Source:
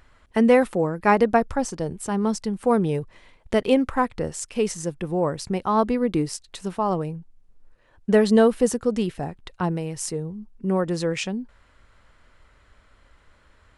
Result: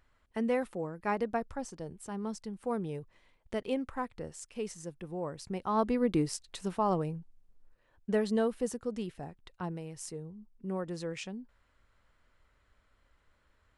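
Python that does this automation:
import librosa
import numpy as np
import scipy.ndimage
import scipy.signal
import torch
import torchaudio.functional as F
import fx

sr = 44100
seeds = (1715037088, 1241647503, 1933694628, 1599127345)

y = fx.gain(x, sr, db=fx.line((5.29, -14.0), (6.05, -5.5), (7.15, -5.5), (8.33, -13.0)))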